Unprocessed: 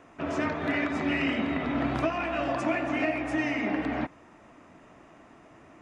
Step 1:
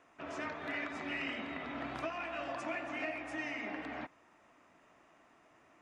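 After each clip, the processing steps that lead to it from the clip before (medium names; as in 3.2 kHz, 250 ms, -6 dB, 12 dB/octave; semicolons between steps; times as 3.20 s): bass shelf 440 Hz -11 dB; trim -7.5 dB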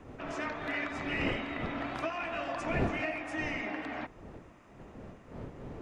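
wind noise 380 Hz -46 dBFS; trim +4 dB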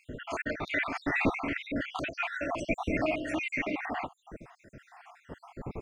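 random holes in the spectrogram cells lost 65%; trim +7.5 dB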